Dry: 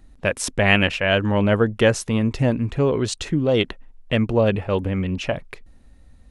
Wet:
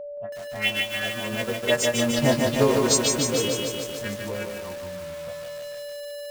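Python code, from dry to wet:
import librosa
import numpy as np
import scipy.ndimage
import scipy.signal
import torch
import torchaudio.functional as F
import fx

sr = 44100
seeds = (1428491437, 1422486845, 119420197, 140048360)

p1 = fx.freq_snap(x, sr, grid_st=2)
p2 = fx.doppler_pass(p1, sr, speed_mps=27, closest_m=10.0, pass_at_s=2.51)
p3 = fx.env_phaser(p2, sr, low_hz=280.0, high_hz=3700.0, full_db=-19.0)
p4 = fx.env_lowpass(p3, sr, base_hz=380.0, full_db=-23.0)
p5 = fx.low_shelf(p4, sr, hz=330.0, db=-8.5)
p6 = fx.transient(p5, sr, attack_db=4, sustain_db=-7)
p7 = p6 + 10.0 ** (-39.0 / 20.0) * np.sin(2.0 * np.pi * 580.0 * np.arange(len(p6)) / sr)
p8 = (np.mod(10.0 ** (28.0 / 20.0) * p7 + 1.0, 2.0) - 1.0) / 10.0 ** (28.0 / 20.0)
p9 = p7 + F.gain(torch.from_numpy(p8), -10.5).numpy()
p10 = fx.low_shelf(p9, sr, hz=100.0, db=-4.0)
p11 = p10 + fx.echo_feedback(p10, sr, ms=174, feedback_pct=21, wet_db=-11, dry=0)
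p12 = fx.echo_crushed(p11, sr, ms=149, feedback_pct=80, bits=7, wet_db=-3.5)
y = F.gain(torch.from_numpy(p12), 3.5).numpy()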